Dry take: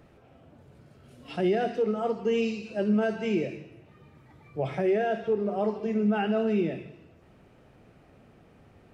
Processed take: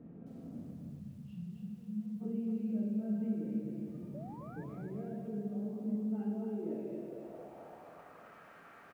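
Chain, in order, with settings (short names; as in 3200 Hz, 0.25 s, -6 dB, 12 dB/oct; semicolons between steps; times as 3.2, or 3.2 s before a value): limiter -26 dBFS, peak gain reduction 9.5 dB; compressor 4:1, threshold -49 dBFS, peak gain reduction 16.5 dB; 5.84–6.85 bell 950 Hz +13 dB 0.25 oct; echo 0.192 s -22 dB; shoebox room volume 590 m³, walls mixed, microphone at 1.7 m; 4.14–4.64 painted sound rise 550–1800 Hz -42 dBFS; band-pass sweep 220 Hz -> 1400 Hz, 6.05–8.38; 0.73–2.21 spectral gain 230–2400 Hz -25 dB; lo-fi delay 0.264 s, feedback 35%, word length 13-bit, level -4 dB; gain +8.5 dB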